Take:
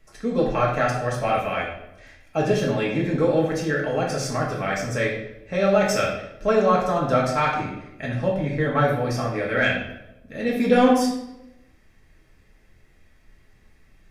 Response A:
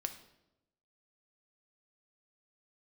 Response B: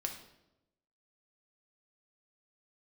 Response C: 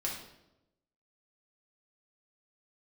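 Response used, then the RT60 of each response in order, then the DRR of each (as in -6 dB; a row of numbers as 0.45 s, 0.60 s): C; 0.90 s, 0.90 s, 0.90 s; 7.0 dB, 2.5 dB, -3.5 dB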